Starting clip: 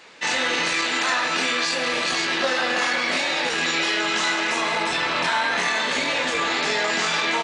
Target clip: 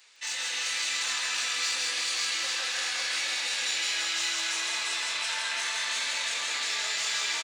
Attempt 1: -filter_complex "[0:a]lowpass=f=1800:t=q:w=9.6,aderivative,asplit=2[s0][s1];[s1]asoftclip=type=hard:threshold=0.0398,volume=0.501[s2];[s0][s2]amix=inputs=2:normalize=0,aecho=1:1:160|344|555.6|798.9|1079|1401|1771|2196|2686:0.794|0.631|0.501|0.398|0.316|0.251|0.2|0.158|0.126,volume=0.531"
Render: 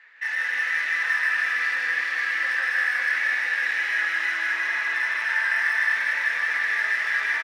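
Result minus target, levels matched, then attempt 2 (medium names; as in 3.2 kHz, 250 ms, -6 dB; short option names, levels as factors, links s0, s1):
2 kHz band +6.5 dB
-filter_complex "[0:a]aderivative,asplit=2[s0][s1];[s1]asoftclip=type=hard:threshold=0.0398,volume=0.501[s2];[s0][s2]amix=inputs=2:normalize=0,aecho=1:1:160|344|555.6|798.9|1079|1401|1771|2196|2686:0.794|0.631|0.501|0.398|0.316|0.251|0.2|0.158|0.126,volume=0.531"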